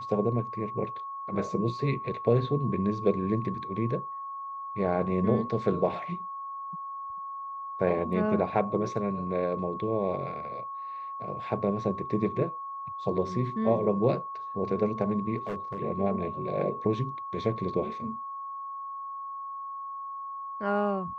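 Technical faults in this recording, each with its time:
tone 1100 Hz -35 dBFS
15.37–15.78 clipped -29 dBFS

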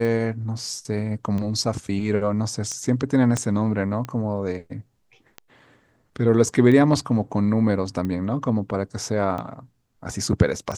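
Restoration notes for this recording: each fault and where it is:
tick 45 rpm -18 dBFS
3.37 pop -11 dBFS

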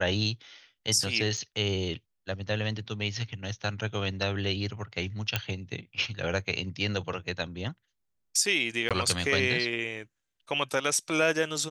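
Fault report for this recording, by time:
1.37–1.38 gap 5.8 ms
5.36 pop -10 dBFS
8.89–8.91 gap 17 ms

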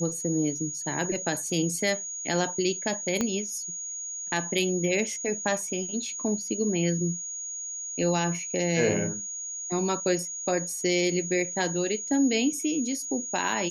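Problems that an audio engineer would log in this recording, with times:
tone 6700 Hz -33 dBFS
3.21 pop -12 dBFS

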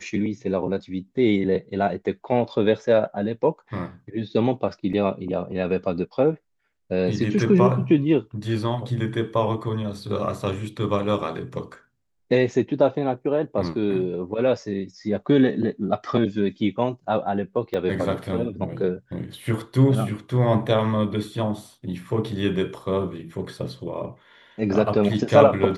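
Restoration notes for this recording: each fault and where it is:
4.93 gap 3.9 ms
17.74 gap 3.3 ms

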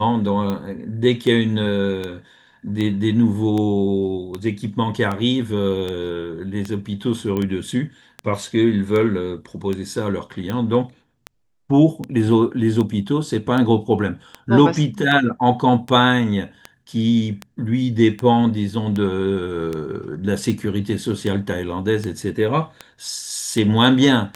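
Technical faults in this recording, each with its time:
tick 78 rpm -13 dBFS
7.37 pop -13 dBFS

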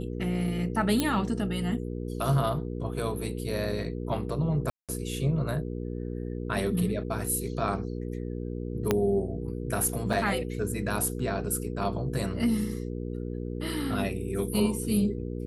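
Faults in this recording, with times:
hum 60 Hz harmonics 8 -34 dBFS
1 pop -10 dBFS
4.7–4.89 gap 0.187 s
8.91 pop -9 dBFS
10.13 gap 4.5 ms

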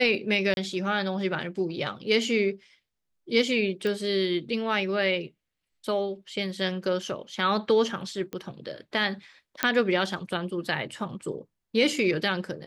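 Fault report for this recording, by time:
0.54–0.57 gap 31 ms
3.87 pop -19 dBFS
8.33 pop -21 dBFS
9.63 pop -7 dBFS

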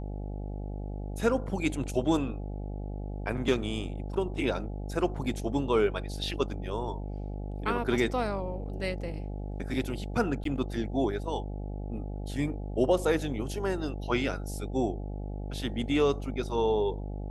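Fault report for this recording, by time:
buzz 50 Hz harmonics 17 -36 dBFS
10.44–10.45 gap 13 ms

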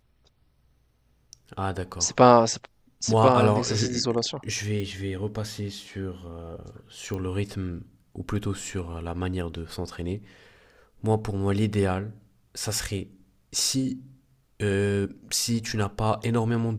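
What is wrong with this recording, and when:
4.8 pop -21 dBFS
7.14 pop -21 dBFS

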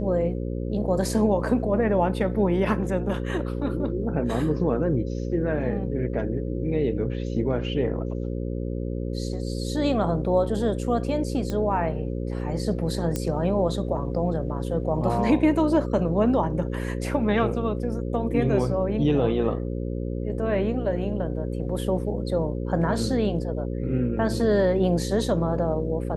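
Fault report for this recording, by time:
buzz 60 Hz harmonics 9 -29 dBFS
11.5 pop -17 dBFS
13.16 pop -13 dBFS

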